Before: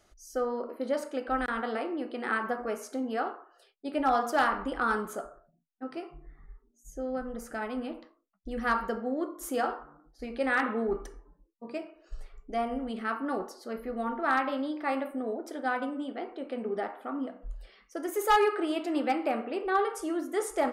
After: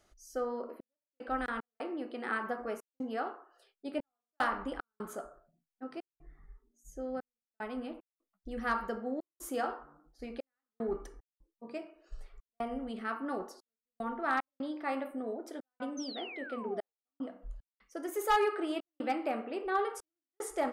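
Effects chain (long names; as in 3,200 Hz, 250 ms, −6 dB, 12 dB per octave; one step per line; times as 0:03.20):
sound drawn into the spectrogram fall, 0:15.97–0:16.94, 420–6,400 Hz −41 dBFS
gate pattern "xxxx..xx.xxxxx.x" 75 BPM −60 dB
level −4.5 dB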